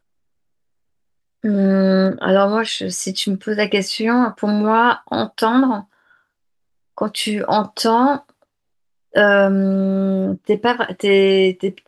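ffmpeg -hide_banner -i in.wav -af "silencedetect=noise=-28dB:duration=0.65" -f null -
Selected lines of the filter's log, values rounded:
silence_start: 0.00
silence_end: 1.44 | silence_duration: 1.44
silence_start: 5.80
silence_end: 6.98 | silence_duration: 1.17
silence_start: 8.18
silence_end: 9.14 | silence_duration: 0.96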